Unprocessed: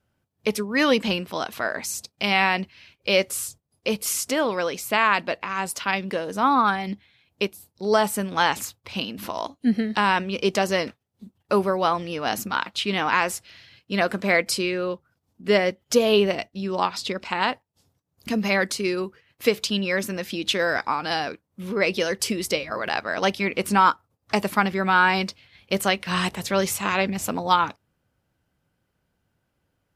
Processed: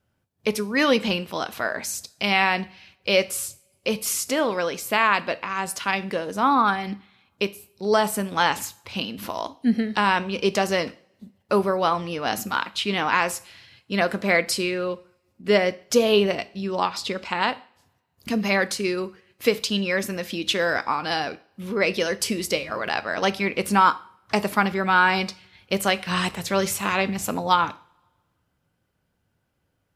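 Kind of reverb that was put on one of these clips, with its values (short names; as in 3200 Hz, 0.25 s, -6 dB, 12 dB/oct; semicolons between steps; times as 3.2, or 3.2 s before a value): two-slope reverb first 0.45 s, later 1.6 s, from -25 dB, DRR 13.5 dB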